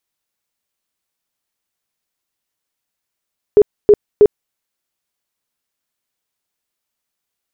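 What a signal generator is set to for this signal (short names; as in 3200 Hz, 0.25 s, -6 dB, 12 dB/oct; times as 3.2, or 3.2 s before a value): tone bursts 416 Hz, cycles 20, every 0.32 s, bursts 3, -3 dBFS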